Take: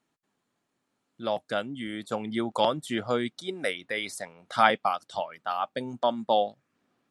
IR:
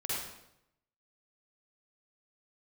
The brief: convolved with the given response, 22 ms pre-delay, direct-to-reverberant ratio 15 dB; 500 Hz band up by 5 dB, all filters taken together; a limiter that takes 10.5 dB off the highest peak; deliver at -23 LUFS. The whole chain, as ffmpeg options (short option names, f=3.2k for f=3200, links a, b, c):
-filter_complex "[0:a]equalizer=f=500:t=o:g=6,alimiter=limit=-13.5dB:level=0:latency=1,asplit=2[a][b];[1:a]atrim=start_sample=2205,adelay=22[c];[b][c]afir=irnorm=-1:irlink=0,volume=-19.5dB[d];[a][d]amix=inputs=2:normalize=0,volume=5.5dB"